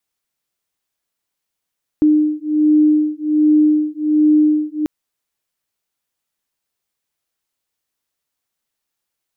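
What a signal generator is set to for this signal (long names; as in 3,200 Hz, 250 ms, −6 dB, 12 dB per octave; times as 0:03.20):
two tones that beat 303 Hz, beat 1.3 Hz, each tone −14 dBFS 2.84 s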